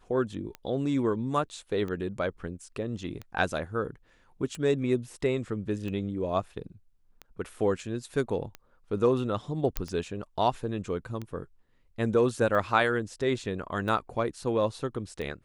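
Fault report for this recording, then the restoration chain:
tick 45 rpm -24 dBFS
9.77 pop -12 dBFS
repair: de-click

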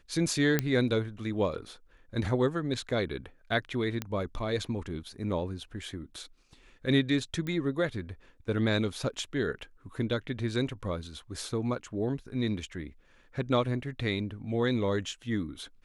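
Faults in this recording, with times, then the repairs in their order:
0.59 pop -11 dBFS
4.02 pop -17 dBFS
7.47 pop -23 dBFS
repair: de-click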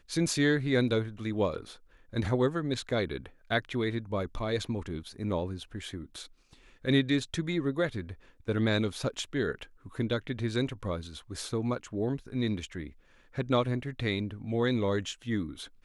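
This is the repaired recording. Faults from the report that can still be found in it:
7.47 pop

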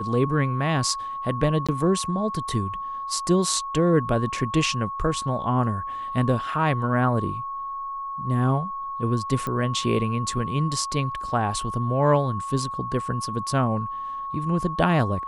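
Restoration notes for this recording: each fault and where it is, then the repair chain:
tone 1100 Hz -29 dBFS
1.67–1.69 gap 16 ms
9.47 pop -16 dBFS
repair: de-click; notch 1100 Hz, Q 30; interpolate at 1.67, 16 ms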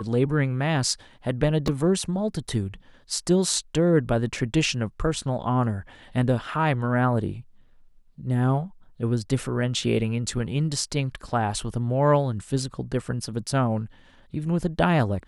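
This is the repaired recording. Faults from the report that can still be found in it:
none

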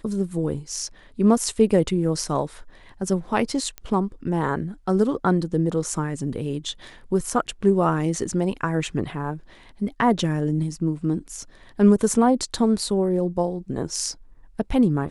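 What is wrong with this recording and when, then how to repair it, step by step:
3.78 pop -17 dBFS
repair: de-click

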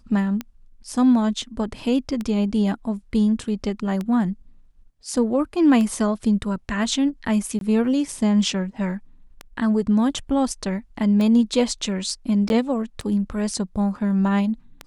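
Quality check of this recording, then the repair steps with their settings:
tick 33 1/3 rpm -15 dBFS
7.59–7.61 gap 22 ms
12.49–12.5 gap 11 ms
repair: de-click; interpolate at 7.59, 22 ms; interpolate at 12.49, 11 ms

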